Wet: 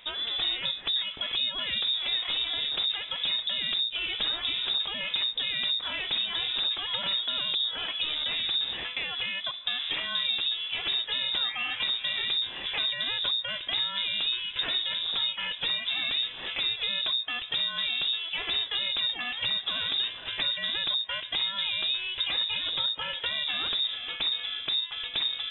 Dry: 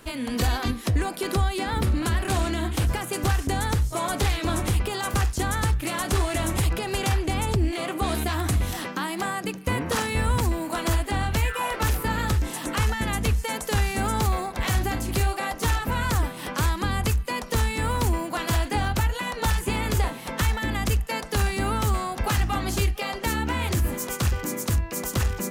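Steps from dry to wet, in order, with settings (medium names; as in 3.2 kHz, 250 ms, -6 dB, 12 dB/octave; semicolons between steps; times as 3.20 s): compression, threshold -25 dBFS, peak gain reduction 7.5 dB; frequency inversion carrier 3.7 kHz; trim -2 dB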